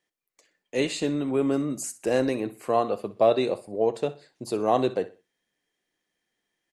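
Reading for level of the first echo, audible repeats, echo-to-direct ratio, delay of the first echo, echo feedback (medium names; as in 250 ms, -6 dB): -16.5 dB, 2, -16.0 dB, 62 ms, 30%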